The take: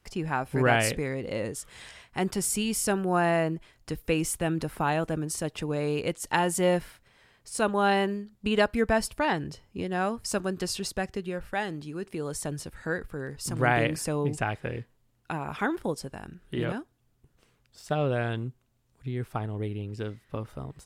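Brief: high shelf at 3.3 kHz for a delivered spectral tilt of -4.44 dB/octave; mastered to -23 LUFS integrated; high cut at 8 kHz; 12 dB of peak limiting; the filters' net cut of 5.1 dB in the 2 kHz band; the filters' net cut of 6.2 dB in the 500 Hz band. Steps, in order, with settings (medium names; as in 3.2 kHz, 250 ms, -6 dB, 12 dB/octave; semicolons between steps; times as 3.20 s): low-pass 8 kHz; peaking EQ 500 Hz -8 dB; peaking EQ 2 kHz -8 dB; treble shelf 3.3 kHz +5.5 dB; trim +12 dB; peak limiter -11.5 dBFS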